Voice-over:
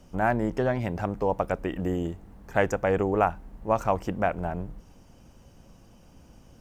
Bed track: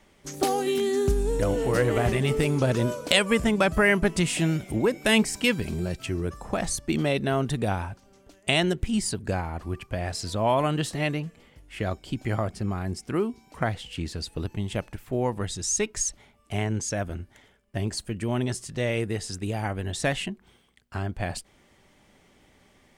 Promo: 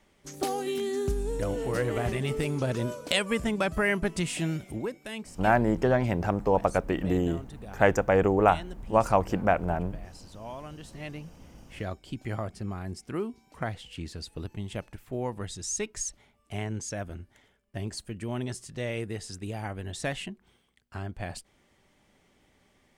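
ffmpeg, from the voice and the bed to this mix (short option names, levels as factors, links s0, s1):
-filter_complex "[0:a]adelay=5250,volume=1.26[s0];[1:a]volume=2.11,afade=t=out:st=4.6:d=0.49:silence=0.237137,afade=t=in:st=10.82:d=0.87:silence=0.251189[s1];[s0][s1]amix=inputs=2:normalize=0"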